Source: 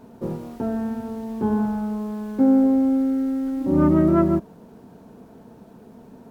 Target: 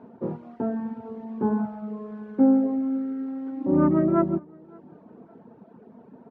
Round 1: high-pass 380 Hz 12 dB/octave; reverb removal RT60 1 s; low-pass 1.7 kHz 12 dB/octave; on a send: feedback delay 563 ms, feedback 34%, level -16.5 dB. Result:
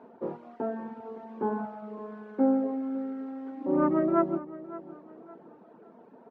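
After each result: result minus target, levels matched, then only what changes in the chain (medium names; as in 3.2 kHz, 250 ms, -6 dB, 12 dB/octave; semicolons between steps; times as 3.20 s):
echo-to-direct +11 dB; 125 Hz band -6.5 dB
change: feedback delay 563 ms, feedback 34%, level -27.5 dB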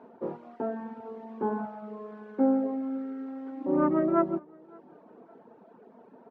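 125 Hz band -7.0 dB
change: high-pass 150 Hz 12 dB/octave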